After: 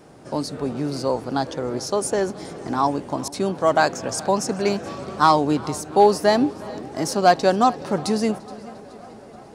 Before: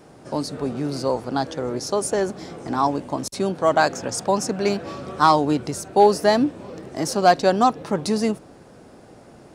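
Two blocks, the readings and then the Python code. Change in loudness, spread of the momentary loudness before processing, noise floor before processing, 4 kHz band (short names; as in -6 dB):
0.0 dB, 12 LU, -47 dBFS, 0.0 dB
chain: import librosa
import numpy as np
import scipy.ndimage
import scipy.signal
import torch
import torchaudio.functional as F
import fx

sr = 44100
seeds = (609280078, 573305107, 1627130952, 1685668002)

y = fx.echo_tape(x, sr, ms=349, feedback_pct=86, wet_db=-23, lp_hz=5200.0, drive_db=5.0, wow_cents=29)
y = fx.echo_warbled(y, sr, ms=425, feedback_pct=47, rate_hz=2.8, cents=56, wet_db=-21)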